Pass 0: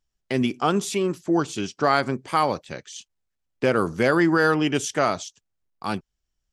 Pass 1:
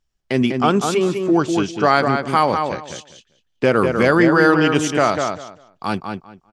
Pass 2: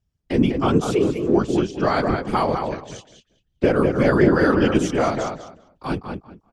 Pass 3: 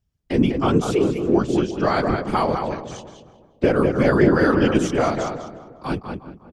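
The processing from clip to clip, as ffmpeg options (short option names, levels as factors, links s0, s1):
-filter_complex "[0:a]highshelf=f=7200:g=-6.5,asplit=2[s0][s1];[s1]adelay=198,lowpass=f=3200:p=1,volume=0.562,asplit=2[s2][s3];[s3]adelay=198,lowpass=f=3200:p=1,volume=0.2,asplit=2[s4][s5];[s5]adelay=198,lowpass=f=3200:p=1,volume=0.2[s6];[s2][s4][s6]amix=inputs=3:normalize=0[s7];[s0][s7]amix=inputs=2:normalize=0,volume=1.78"
-filter_complex "[0:a]tiltshelf=f=890:g=6.5,acrossover=split=710|1800[s0][s1][s2];[s2]acontrast=34[s3];[s0][s1][s3]amix=inputs=3:normalize=0,afftfilt=real='hypot(re,im)*cos(2*PI*random(0))':imag='hypot(re,im)*sin(2*PI*random(1))':win_size=512:overlap=0.75"
-filter_complex "[0:a]asplit=2[s0][s1];[s1]adelay=358,lowpass=f=1000:p=1,volume=0.188,asplit=2[s2][s3];[s3]adelay=358,lowpass=f=1000:p=1,volume=0.32,asplit=2[s4][s5];[s5]adelay=358,lowpass=f=1000:p=1,volume=0.32[s6];[s0][s2][s4][s6]amix=inputs=4:normalize=0"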